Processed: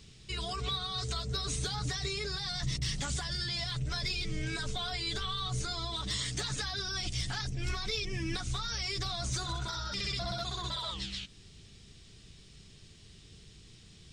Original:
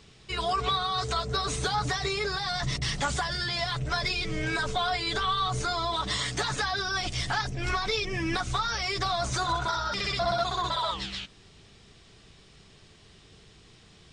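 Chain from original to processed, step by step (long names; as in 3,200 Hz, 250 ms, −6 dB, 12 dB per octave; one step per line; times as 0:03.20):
parametric band 890 Hz −13.5 dB 2.7 octaves
in parallel at −1.5 dB: downward compressor 12 to 1, threshold −42 dBFS, peak gain reduction 15 dB
on the sum: gain into a clipping stage and back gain 22 dB
level −2.5 dB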